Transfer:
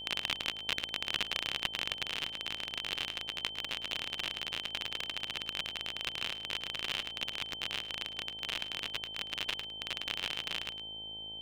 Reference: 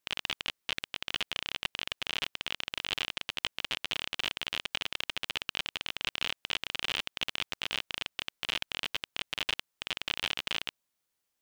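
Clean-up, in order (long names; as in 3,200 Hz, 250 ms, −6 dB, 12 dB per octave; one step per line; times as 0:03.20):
hum removal 53.9 Hz, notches 17
notch filter 3,100 Hz, Q 30
echo removal 107 ms −14 dB
level correction +4 dB, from 0:02.03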